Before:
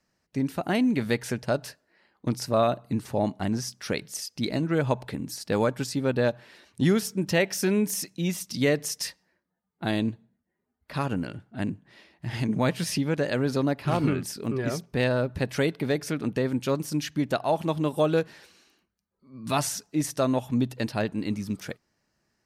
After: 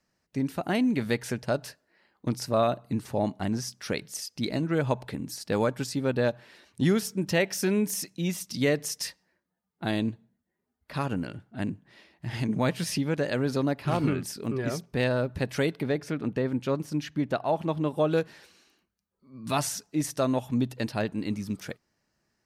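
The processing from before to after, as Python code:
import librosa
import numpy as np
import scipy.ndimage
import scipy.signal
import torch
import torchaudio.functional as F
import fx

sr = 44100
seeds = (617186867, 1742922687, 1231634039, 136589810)

y = fx.high_shelf(x, sr, hz=4600.0, db=-11.5, at=(15.83, 18.11))
y = F.gain(torch.from_numpy(y), -1.5).numpy()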